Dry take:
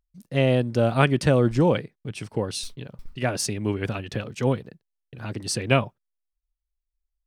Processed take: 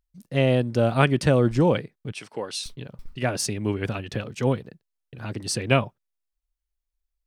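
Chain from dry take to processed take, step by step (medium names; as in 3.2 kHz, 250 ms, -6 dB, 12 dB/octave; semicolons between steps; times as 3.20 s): 2.12–2.66 s: frequency weighting A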